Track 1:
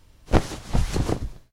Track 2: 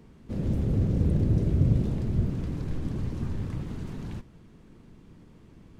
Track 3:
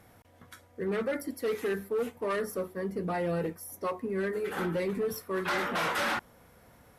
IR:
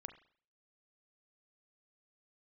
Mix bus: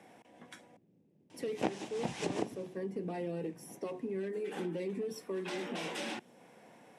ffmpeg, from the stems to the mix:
-filter_complex "[0:a]adelay=1300,volume=2dB[a];[1:a]acompressor=threshold=-32dB:ratio=3,volume=-13.5dB,asplit=2[b][c];[c]volume=-13dB[d];[2:a]acrossover=split=490|3000[e][f][g];[f]acompressor=threshold=-47dB:ratio=3[h];[e][h][g]amix=inputs=3:normalize=0,volume=0dB,asplit=3[i][j][k];[i]atrim=end=0.77,asetpts=PTS-STARTPTS,afade=t=out:st=0.766:d=0.004:c=hsin[l];[j]atrim=start=0.77:end=1.34,asetpts=PTS-STARTPTS,volume=0[m];[k]atrim=start=1.34,asetpts=PTS-STARTPTS,afade=t=in:d=0.004:c=hsin[n];[l][m][n]concat=n=3:v=0:a=1,asplit=3[o][p][q];[p]volume=-12dB[r];[q]apad=whole_len=260094[s];[b][s]sidechaingate=range=-33dB:threshold=-46dB:ratio=16:detection=peak[t];[3:a]atrim=start_sample=2205[u];[d][r]amix=inputs=2:normalize=0[v];[v][u]afir=irnorm=-1:irlink=0[w];[a][t][o][w]amix=inputs=4:normalize=0,highpass=f=170:w=0.5412,highpass=f=170:w=1.3066,equalizer=f=340:t=q:w=4:g=3,equalizer=f=790:t=q:w=4:g=4,equalizer=f=1.3k:t=q:w=4:g=-9,equalizer=f=2.6k:t=q:w=4:g=4,equalizer=f=4.4k:t=q:w=4:g=-6,equalizer=f=6.7k:t=q:w=4:g=-3,lowpass=f=9k:w=0.5412,lowpass=f=9k:w=1.3066,acompressor=threshold=-37dB:ratio=2.5"

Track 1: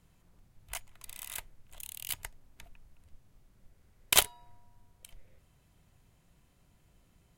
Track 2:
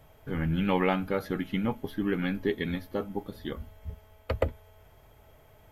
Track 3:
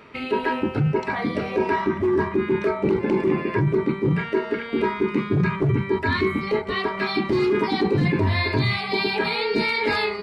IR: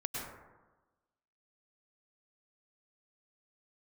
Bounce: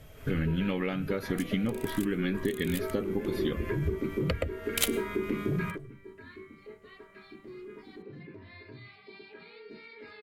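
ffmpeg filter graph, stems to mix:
-filter_complex "[0:a]adelay=650,volume=-12.5dB,asplit=2[a][b];[b]volume=-18dB[c];[1:a]highshelf=f=10k:g=10,acontrast=63,volume=-0.5dB,asplit=2[d][e];[2:a]lowpass=f=1.4k:p=1,lowshelf=f=290:g=-9.5,bandreject=f=97.05:t=h:w=4,bandreject=f=194.1:t=h:w=4,bandreject=f=291.15:t=h:w=4,bandreject=f=388.2:t=h:w=4,bandreject=f=485.25:t=h:w=4,bandreject=f=582.3:t=h:w=4,bandreject=f=679.35:t=h:w=4,bandreject=f=776.4:t=h:w=4,bandreject=f=873.45:t=h:w=4,bandreject=f=970.5:t=h:w=4,bandreject=f=1.06755k:t=h:w=4,bandreject=f=1.1646k:t=h:w=4,bandreject=f=1.26165k:t=h:w=4,bandreject=f=1.3587k:t=h:w=4,bandreject=f=1.45575k:t=h:w=4,bandreject=f=1.5528k:t=h:w=4,bandreject=f=1.64985k:t=h:w=4,bandreject=f=1.7469k:t=h:w=4,bandreject=f=1.84395k:t=h:w=4,bandreject=f=1.941k:t=h:w=4,bandreject=f=2.03805k:t=h:w=4,bandreject=f=2.1351k:t=h:w=4,bandreject=f=2.23215k:t=h:w=4,bandreject=f=2.3292k:t=h:w=4,bandreject=f=2.42625k:t=h:w=4,bandreject=f=2.5233k:t=h:w=4,bandreject=f=2.62035k:t=h:w=4,bandreject=f=2.7174k:t=h:w=4,bandreject=f=2.81445k:t=h:w=4,bandreject=f=2.9115k:t=h:w=4,bandreject=f=3.00855k:t=h:w=4,bandreject=f=3.1056k:t=h:w=4,bandreject=f=3.20265k:t=h:w=4,bandreject=f=3.2997k:t=h:w=4,bandreject=f=3.39675k:t=h:w=4,bandreject=f=3.4938k:t=h:w=4,bandreject=f=3.59085k:t=h:w=4,adelay=150,volume=-5.5dB[f];[e]apad=whole_len=457322[g];[f][g]sidechaingate=range=-21dB:threshold=-55dB:ratio=16:detection=peak[h];[d][h]amix=inputs=2:normalize=0,lowpass=9.3k,acompressor=threshold=-32dB:ratio=16,volume=0dB[i];[3:a]atrim=start_sample=2205[j];[c][j]afir=irnorm=-1:irlink=0[k];[a][i][k]amix=inputs=3:normalize=0,equalizer=f=880:t=o:w=0.71:g=-12,dynaudnorm=f=160:g=3:m=7dB"

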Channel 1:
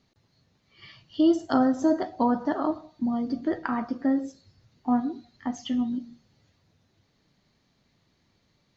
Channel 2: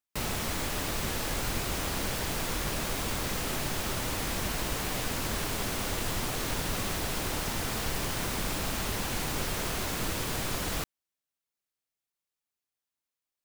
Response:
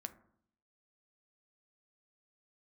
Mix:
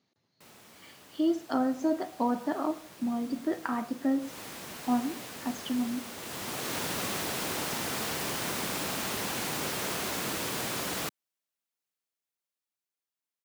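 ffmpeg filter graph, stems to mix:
-filter_complex "[0:a]volume=-6.5dB[a];[1:a]adelay=250,volume=-3dB,afade=t=in:st=4.18:d=0.22:silence=0.375837,afade=t=in:st=6.15:d=0.66:silence=0.334965[b];[a][b]amix=inputs=2:normalize=0,highpass=170,dynaudnorm=f=330:g=13:m=3.5dB"

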